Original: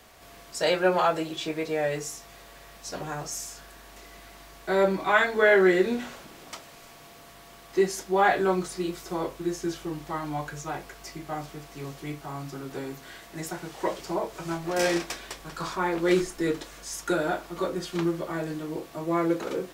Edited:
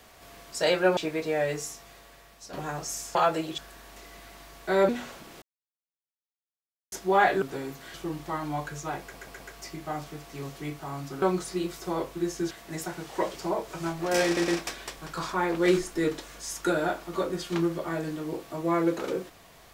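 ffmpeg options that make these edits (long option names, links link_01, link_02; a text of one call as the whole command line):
ffmpeg -i in.wav -filter_complex "[0:a]asplit=17[link_01][link_02][link_03][link_04][link_05][link_06][link_07][link_08][link_09][link_10][link_11][link_12][link_13][link_14][link_15][link_16][link_17];[link_01]atrim=end=0.972[link_18];[link_02]atrim=start=1.398:end=2.96,asetpts=PTS-STARTPTS,afade=type=out:start_time=0.622:duration=0.94:silence=0.354813[link_19];[link_03]atrim=start=2.96:end=3.582,asetpts=PTS-STARTPTS,afade=type=in:duration=0.004:curve=hsin:silence=0.354813[link_20];[link_04]atrim=start=0.968:end=1.402[link_21];[link_05]atrim=start=3.578:end=4.892[link_22];[link_06]atrim=start=5.928:end=6.46,asetpts=PTS-STARTPTS,afade=type=out:start_time=0.528:duration=0.004:curve=hsin[link_23];[link_07]atrim=start=6.46:end=7.96,asetpts=PTS-STARTPTS,volume=0[link_24];[link_08]atrim=start=7.96:end=8.462,asetpts=PTS-STARTPTS,afade=type=in:duration=0.004:curve=hsin[link_25];[link_09]atrim=start=12.638:end=13.162[link_26];[link_10]atrim=start=9.748:end=10.952[link_27];[link_11]atrim=start=10.818:end=10.952[link_28];[link_12]atrim=start=10.818:end=10.952[link_29];[link_13]atrim=start=10.818:end=12.642[link_30];[link_14]atrim=start=8.458:end=9.752[link_31];[link_15]atrim=start=13.158:end=15.022[link_32];[link_16]atrim=start=14.908:end=15.022[link_33];[link_17]atrim=start=14.908[link_34];[link_19][link_20]concat=n=2:v=0:a=1[link_35];[link_18][link_35]acrossfade=duration=0.004:curve1=hsin:curve2=hsin[link_36];[link_36][link_21]acrossfade=duration=0.004:curve1=hsin:curve2=hsin[link_37];[link_37][link_22]acrossfade=duration=0.004:curve1=hsin:curve2=hsin[link_38];[link_23][link_24][link_25]concat=n=3:v=0:a=1[link_39];[link_38][link_39]acrossfade=duration=0.004:curve1=hsin:curve2=hsin[link_40];[link_40][link_26]acrossfade=duration=0.004:curve1=hsin:curve2=hsin[link_41];[link_41][link_27]acrossfade=duration=0.004:curve1=hsin:curve2=hsin[link_42];[link_42][link_28]acrossfade=duration=0.004:curve1=hsin:curve2=hsin[link_43];[link_43][link_29]acrossfade=duration=0.004:curve1=hsin:curve2=hsin[link_44];[link_44][link_30]acrossfade=duration=0.004:curve1=hsin:curve2=hsin[link_45];[link_45][link_31]acrossfade=duration=0.004:curve1=hsin:curve2=hsin[link_46];[link_46][link_32]acrossfade=duration=0.004:curve1=hsin:curve2=hsin[link_47];[link_47][link_33]acrossfade=duration=0.004:curve1=hsin:curve2=hsin[link_48];[link_48][link_34]acrossfade=duration=0.004:curve1=hsin:curve2=hsin" out.wav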